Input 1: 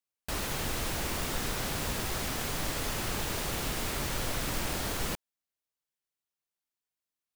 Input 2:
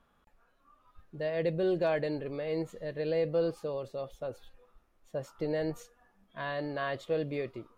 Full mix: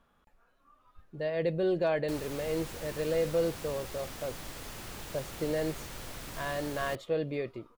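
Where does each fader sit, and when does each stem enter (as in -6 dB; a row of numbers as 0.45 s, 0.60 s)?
-10.0 dB, +0.5 dB; 1.80 s, 0.00 s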